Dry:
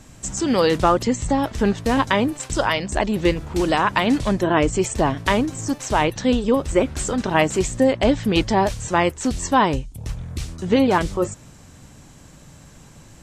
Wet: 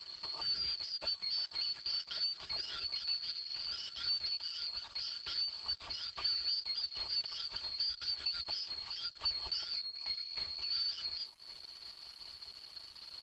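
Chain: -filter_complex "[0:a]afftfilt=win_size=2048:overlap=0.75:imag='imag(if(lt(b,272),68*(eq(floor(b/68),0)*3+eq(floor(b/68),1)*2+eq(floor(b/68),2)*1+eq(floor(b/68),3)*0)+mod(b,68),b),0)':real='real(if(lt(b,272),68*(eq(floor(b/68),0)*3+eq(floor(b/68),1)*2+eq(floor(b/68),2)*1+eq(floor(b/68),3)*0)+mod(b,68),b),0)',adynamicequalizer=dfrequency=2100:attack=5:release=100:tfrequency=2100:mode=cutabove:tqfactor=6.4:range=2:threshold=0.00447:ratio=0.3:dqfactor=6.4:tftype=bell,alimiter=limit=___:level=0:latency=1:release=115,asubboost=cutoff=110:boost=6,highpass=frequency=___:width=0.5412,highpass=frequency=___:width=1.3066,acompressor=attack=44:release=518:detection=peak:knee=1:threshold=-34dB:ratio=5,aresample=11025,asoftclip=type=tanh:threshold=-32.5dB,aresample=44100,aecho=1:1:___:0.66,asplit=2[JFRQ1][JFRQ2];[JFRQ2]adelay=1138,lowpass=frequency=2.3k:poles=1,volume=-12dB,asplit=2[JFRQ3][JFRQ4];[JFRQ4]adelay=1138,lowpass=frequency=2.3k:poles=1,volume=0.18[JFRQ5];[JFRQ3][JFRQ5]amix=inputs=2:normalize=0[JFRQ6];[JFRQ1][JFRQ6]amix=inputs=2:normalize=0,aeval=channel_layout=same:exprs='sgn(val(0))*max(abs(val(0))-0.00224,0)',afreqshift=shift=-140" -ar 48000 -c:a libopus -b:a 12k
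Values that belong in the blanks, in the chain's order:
-15dB, 65, 65, 3.9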